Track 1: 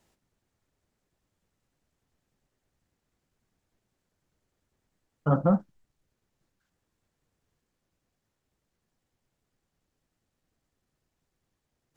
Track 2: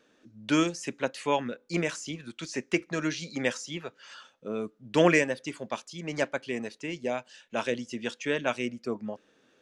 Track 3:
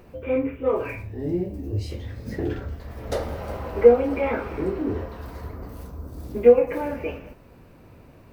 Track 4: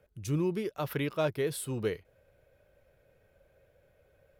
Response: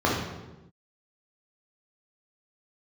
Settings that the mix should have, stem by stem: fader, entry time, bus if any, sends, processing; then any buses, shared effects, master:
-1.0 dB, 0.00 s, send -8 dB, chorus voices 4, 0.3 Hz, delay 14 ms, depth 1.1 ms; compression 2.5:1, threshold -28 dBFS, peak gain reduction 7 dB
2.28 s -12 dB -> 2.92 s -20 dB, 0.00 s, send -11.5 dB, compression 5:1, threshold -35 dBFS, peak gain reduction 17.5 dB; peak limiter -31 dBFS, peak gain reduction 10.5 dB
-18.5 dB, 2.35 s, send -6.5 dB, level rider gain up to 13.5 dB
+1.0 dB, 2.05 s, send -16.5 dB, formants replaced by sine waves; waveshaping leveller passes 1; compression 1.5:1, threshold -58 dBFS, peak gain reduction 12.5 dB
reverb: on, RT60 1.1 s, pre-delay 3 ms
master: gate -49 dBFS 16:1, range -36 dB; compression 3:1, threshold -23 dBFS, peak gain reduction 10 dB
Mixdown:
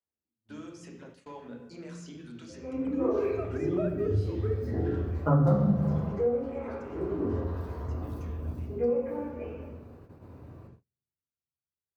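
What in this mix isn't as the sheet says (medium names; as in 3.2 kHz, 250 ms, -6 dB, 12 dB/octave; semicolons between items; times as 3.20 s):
stem 1: missing compression 2.5:1, threshold -28 dBFS, peak gain reduction 7 dB; stem 3 -18.5 dB -> -28.0 dB; stem 4: entry 2.05 s -> 2.60 s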